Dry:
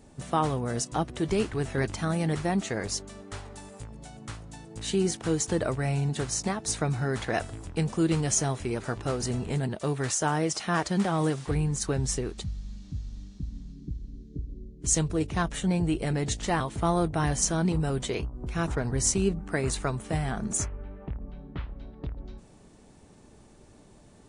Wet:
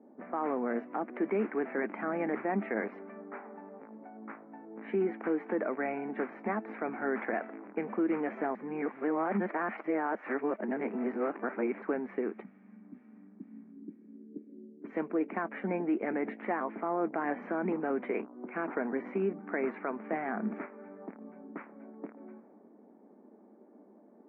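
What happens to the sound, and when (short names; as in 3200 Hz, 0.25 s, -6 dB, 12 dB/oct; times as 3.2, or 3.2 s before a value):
8.55–11.82 reverse
whole clip: low-pass opened by the level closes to 620 Hz, open at -26 dBFS; Chebyshev band-pass 210–2300 Hz, order 5; limiter -23 dBFS; gain +1 dB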